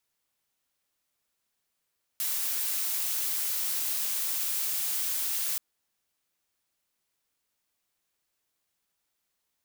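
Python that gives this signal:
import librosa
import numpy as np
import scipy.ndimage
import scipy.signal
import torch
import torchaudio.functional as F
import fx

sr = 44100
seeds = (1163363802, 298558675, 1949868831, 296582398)

y = fx.noise_colour(sr, seeds[0], length_s=3.38, colour='blue', level_db=-30.0)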